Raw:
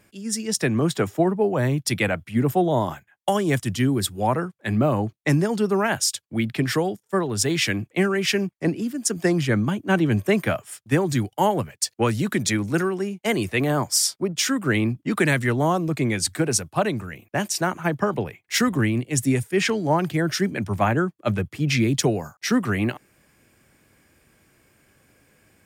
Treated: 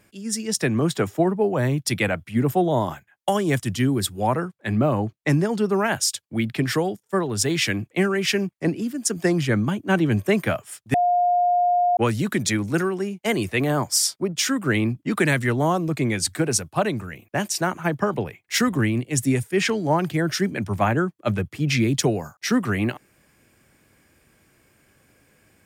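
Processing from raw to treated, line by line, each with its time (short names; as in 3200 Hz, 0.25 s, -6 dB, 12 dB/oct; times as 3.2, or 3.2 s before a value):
4.53–5.73 high shelf 5500 Hz -4.5 dB
10.94–11.97 bleep 710 Hz -16 dBFS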